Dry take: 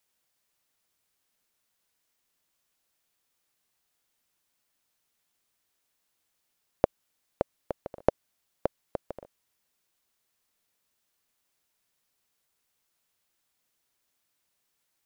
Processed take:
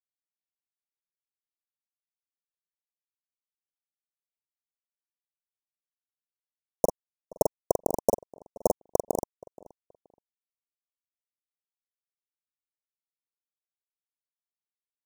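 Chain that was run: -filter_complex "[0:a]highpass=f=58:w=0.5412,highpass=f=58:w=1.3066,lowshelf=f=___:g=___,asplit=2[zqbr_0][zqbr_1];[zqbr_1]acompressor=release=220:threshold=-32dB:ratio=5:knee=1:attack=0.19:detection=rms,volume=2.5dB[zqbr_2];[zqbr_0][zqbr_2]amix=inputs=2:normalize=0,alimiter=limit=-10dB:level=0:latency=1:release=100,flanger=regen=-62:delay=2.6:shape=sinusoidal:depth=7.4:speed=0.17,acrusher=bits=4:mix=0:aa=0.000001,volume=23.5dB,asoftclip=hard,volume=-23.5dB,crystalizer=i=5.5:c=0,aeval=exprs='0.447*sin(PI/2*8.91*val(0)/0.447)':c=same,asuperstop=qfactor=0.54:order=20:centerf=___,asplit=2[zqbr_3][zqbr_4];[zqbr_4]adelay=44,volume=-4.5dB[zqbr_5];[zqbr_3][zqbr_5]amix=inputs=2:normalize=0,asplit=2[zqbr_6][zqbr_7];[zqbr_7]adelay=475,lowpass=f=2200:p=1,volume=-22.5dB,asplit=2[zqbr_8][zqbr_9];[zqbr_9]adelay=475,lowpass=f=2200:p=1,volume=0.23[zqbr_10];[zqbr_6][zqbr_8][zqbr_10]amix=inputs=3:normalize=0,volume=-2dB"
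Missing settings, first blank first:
99, -5, 2400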